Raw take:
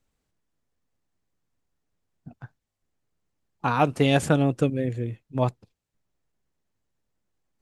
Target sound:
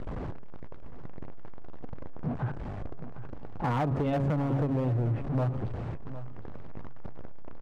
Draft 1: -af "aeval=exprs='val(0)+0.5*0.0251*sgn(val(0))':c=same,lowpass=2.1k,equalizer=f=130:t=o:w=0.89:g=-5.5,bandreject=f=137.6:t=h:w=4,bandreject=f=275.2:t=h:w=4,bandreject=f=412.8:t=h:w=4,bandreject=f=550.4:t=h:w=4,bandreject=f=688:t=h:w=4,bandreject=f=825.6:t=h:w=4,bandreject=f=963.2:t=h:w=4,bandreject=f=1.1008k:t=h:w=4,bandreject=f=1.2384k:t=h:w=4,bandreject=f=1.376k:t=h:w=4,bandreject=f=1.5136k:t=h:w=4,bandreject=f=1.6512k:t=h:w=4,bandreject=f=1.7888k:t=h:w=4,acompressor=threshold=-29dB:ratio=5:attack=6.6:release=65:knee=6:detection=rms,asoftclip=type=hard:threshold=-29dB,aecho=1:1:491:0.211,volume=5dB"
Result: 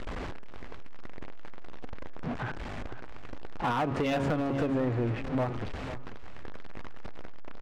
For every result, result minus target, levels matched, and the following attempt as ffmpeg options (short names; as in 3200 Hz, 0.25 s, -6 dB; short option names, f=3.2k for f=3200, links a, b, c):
2000 Hz band +7.0 dB; echo 0.265 s early; 125 Hz band -5.0 dB
-af "aeval=exprs='val(0)+0.5*0.0251*sgn(val(0))':c=same,lowpass=1k,equalizer=f=130:t=o:w=0.89:g=-5.5,bandreject=f=137.6:t=h:w=4,bandreject=f=275.2:t=h:w=4,bandreject=f=412.8:t=h:w=4,bandreject=f=550.4:t=h:w=4,bandreject=f=688:t=h:w=4,bandreject=f=825.6:t=h:w=4,bandreject=f=963.2:t=h:w=4,bandreject=f=1.1008k:t=h:w=4,bandreject=f=1.2384k:t=h:w=4,bandreject=f=1.376k:t=h:w=4,bandreject=f=1.5136k:t=h:w=4,bandreject=f=1.6512k:t=h:w=4,bandreject=f=1.7888k:t=h:w=4,acompressor=threshold=-29dB:ratio=5:attack=6.6:release=65:knee=6:detection=rms,asoftclip=type=hard:threshold=-29dB,aecho=1:1:491:0.211,volume=5dB"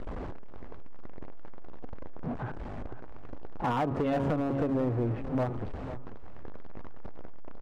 echo 0.265 s early; 125 Hz band -4.5 dB
-af "aeval=exprs='val(0)+0.5*0.0251*sgn(val(0))':c=same,lowpass=1k,equalizer=f=130:t=o:w=0.89:g=-5.5,bandreject=f=137.6:t=h:w=4,bandreject=f=275.2:t=h:w=4,bandreject=f=412.8:t=h:w=4,bandreject=f=550.4:t=h:w=4,bandreject=f=688:t=h:w=4,bandreject=f=825.6:t=h:w=4,bandreject=f=963.2:t=h:w=4,bandreject=f=1.1008k:t=h:w=4,bandreject=f=1.2384k:t=h:w=4,bandreject=f=1.376k:t=h:w=4,bandreject=f=1.5136k:t=h:w=4,bandreject=f=1.6512k:t=h:w=4,bandreject=f=1.7888k:t=h:w=4,acompressor=threshold=-29dB:ratio=5:attack=6.6:release=65:knee=6:detection=rms,asoftclip=type=hard:threshold=-29dB,aecho=1:1:756:0.211,volume=5dB"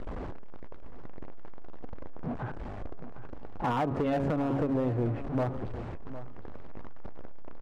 125 Hz band -4.5 dB
-af "aeval=exprs='val(0)+0.5*0.0251*sgn(val(0))':c=same,lowpass=1k,equalizer=f=130:t=o:w=0.89:g=3.5,bandreject=f=137.6:t=h:w=4,bandreject=f=275.2:t=h:w=4,bandreject=f=412.8:t=h:w=4,bandreject=f=550.4:t=h:w=4,bandreject=f=688:t=h:w=4,bandreject=f=825.6:t=h:w=4,bandreject=f=963.2:t=h:w=4,bandreject=f=1.1008k:t=h:w=4,bandreject=f=1.2384k:t=h:w=4,bandreject=f=1.376k:t=h:w=4,bandreject=f=1.5136k:t=h:w=4,bandreject=f=1.6512k:t=h:w=4,bandreject=f=1.7888k:t=h:w=4,acompressor=threshold=-29dB:ratio=5:attack=6.6:release=65:knee=6:detection=rms,asoftclip=type=hard:threshold=-29dB,aecho=1:1:756:0.211,volume=5dB"